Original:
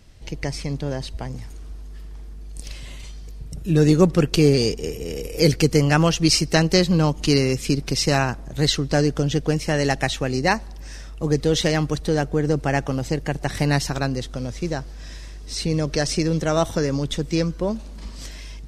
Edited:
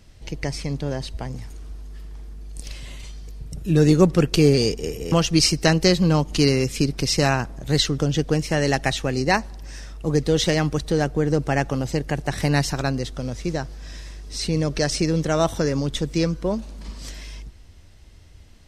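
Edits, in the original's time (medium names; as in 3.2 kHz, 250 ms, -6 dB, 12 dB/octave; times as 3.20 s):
5.12–6.01 s: delete
8.87–9.15 s: delete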